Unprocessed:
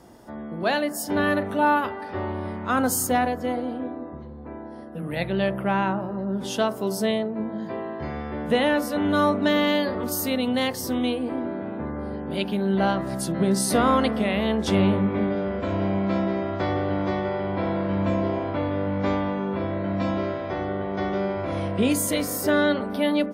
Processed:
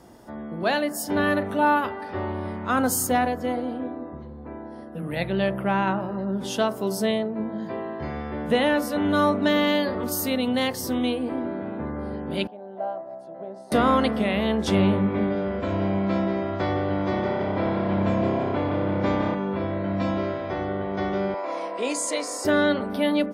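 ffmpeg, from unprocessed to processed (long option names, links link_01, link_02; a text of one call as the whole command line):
ffmpeg -i in.wav -filter_complex "[0:a]asettb=1/sr,asplit=3[link_01][link_02][link_03];[link_01]atrim=end=5.874[link_04];[link_02]atrim=start=5.87:end=6.31,asetpts=PTS-STARTPTS,afade=type=in:duration=0.004:curve=qsin,afade=type=out:start_time=0.436:duration=0.004:curve=qsin,equalizer=frequency=3200:width=0.5:gain=5.5[link_05];[link_03]atrim=start=6.306[link_06];[link_04][link_05]acrossfade=duration=0.004:curve1=hsin:curve2=qsin[link_07];[link_07][link_06]acrossfade=duration=0.004:curve1=qsin:curve2=hsin,asettb=1/sr,asplit=3[link_08][link_09][link_10];[link_08]atrim=end=12.474[link_11];[link_09]atrim=start=12.47:end=13.72,asetpts=PTS-STARTPTS,afade=type=in:duration=0.004:curve=qsin,afade=type=out:start_time=1.246:duration=0.004:curve=qsin,bandpass=frequency=670:width_type=q:width=5.1[link_12];[link_10]atrim=start=13.716[link_13];[link_11][link_12]acrossfade=duration=0.004:curve1=hsin:curve2=qsin[link_14];[link_14][link_13]acrossfade=duration=0.004:curve1=qsin:curve2=hsin,asettb=1/sr,asplit=3[link_15][link_16][link_17];[link_15]atrim=end=16.954[link_18];[link_16]atrim=start=16.95:end=19.35,asetpts=PTS-STARTPTS,afade=type=in:duration=0.004:curve=qsin,afade=type=out:start_time=2.396:duration=0.004:curve=qsin,asplit=8[link_19][link_20][link_21][link_22][link_23][link_24][link_25][link_26];[link_20]adelay=162,afreqshift=33,volume=-7dB[link_27];[link_21]adelay=324,afreqshift=66,volume=-11.9dB[link_28];[link_22]adelay=486,afreqshift=99,volume=-16.8dB[link_29];[link_23]adelay=648,afreqshift=132,volume=-21.6dB[link_30];[link_24]adelay=810,afreqshift=165,volume=-26.5dB[link_31];[link_25]adelay=972,afreqshift=198,volume=-31.4dB[link_32];[link_26]adelay=1134,afreqshift=231,volume=-36.3dB[link_33];[link_19][link_27][link_28][link_29][link_30][link_31][link_32][link_33]amix=inputs=8:normalize=0,atrim=end_sample=105840[link_34];[link_17]atrim=start=19.346[link_35];[link_18][link_34]acrossfade=duration=0.004:curve1=hsin:curve2=qsin[link_36];[link_36][link_35]acrossfade=duration=0.004:curve1=qsin:curve2=hsin,asettb=1/sr,asplit=3[link_37][link_38][link_39];[link_37]atrim=end=21.344[link_40];[link_38]atrim=start=21.34:end=22.45,asetpts=PTS-STARTPTS,afade=type=in:duration=0.004:curve=qsin,afade=type=out:start_time=1.106:duration=0.004:curve=qsin,highpass=frequency=350:width=0.5412,highpass=frequency=350:width=1.3066,equalizer=frequency=380:width_type=q:width=4:gain=-5,equalizer=frequency=970:width_type=q:width=4:gain=6,equalizer=frequency=1500:width_type=q:width=4:gain=-5,equalizer=frequency=3200:width_type=q:width=4:gain=-6,equalizer=frequency=4900:width_type=q:width=4:gain=3,equalizer=frequency=7300:width_type=q:width=4:gain=5,lowpass=frequency=8600:width=0.5412,lowpass=frequency=8600:width=1.3066[link_41];[link_39]atrim=start=22.446[link_42];[link_40][link_41]acrossfade=duration=0.004:curve1=hsin:curve2=qsin[link_43];[link_43][link_42]acrossfade=duration=0.004:curve1=qsin:curve2=hsin" out.wav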